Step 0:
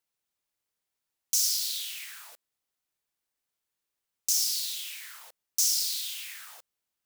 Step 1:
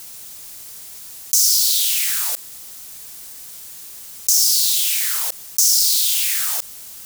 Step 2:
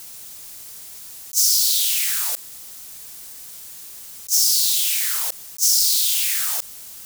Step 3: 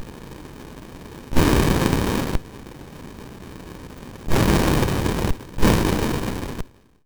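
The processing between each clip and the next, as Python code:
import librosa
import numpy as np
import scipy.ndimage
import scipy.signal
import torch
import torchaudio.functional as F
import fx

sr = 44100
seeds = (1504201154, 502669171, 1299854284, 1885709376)

y1 = fx.bass_treble(x, sr, bass_db=5, treble_db=11)
y1 = fx.env_flatten(y1, sr, amount_pct=70)
y1 = y1 * 10.0 ** (-1.0 / 20.0)
y2 = fx.attack_slew(y1, sr, db_per_s=410.0)
y2 = y2 * 10.0 ** (-1.5 / 20.0)
y3 = fx.fade_out_tail(y2, sr, length_s=1.35)
y3 = fx.running_max(y3, sr, window=65)
y3 = y3 * 10.0 ** (7.5 / 20.0)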